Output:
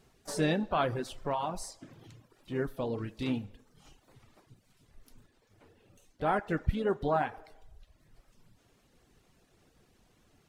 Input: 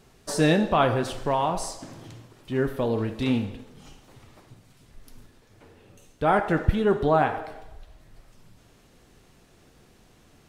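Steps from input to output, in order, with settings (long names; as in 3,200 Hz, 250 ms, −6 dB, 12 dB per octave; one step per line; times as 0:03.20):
pitch-shifted copies added +4 semitones −15 dB
reverb reduction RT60 0.73 s
level −7.5 dB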